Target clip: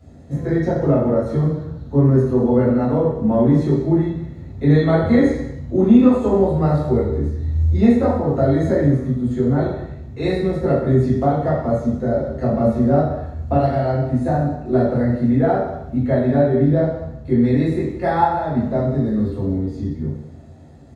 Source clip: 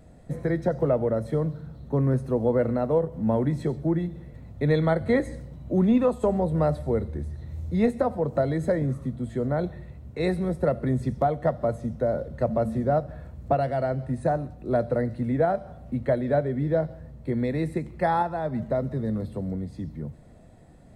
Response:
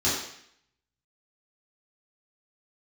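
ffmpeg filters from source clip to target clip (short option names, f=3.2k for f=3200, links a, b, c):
-filter_complex "[0:a]aecho=1:1:189:0.158[a];[1:a]atrim=start_sample=2205[b];[a][b]afir=irnorm=-1:irlink=0,volume=-7dB"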